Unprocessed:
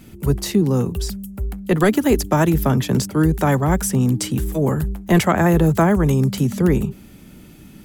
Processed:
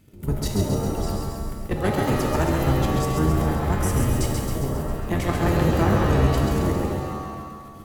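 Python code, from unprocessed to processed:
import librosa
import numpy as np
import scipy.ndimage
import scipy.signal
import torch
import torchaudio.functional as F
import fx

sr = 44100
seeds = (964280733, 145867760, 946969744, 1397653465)

p1 = fx.octave_divider(x, sr, octaves=1, level_db=1.0)
p2 = fx.level_steps(p1, sr, step_db=13)
p3 = 10.0 ** (-13.0 / 20.0) * np.tanh(p2 / 10.0 ** (-13.0 / 20.0))
p4 = p3 + fx.echo_feedback(p3, sr, ms=135, feedback_pct=60, wet_db=-4.5, dry=0)
p5 = fx.rev_shimmer(p4, sr, seeds[0], rt60_s=1.1, semitones=7, shimmer_db=-2, drr_db=4.5)
y = p5 * 10.0 ** (-4.5 / 20.0)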